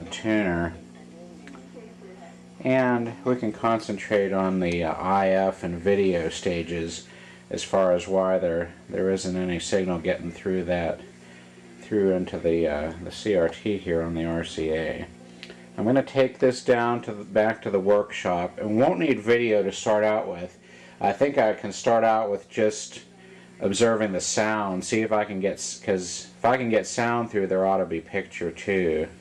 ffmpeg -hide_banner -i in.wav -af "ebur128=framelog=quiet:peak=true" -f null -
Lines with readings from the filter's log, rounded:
Integrated loudness:
  I:         -24.8 LUFS
  Threshold: -35.4 LUFS
Loudness range:
  LRA:         3.9 LU
  Threshold: -45.3 LUFS
  LRA low:   -27.5 LUFS
  LRA high:  -23.6 LUFS
True peak:
  Peak:      -11.2 dBFS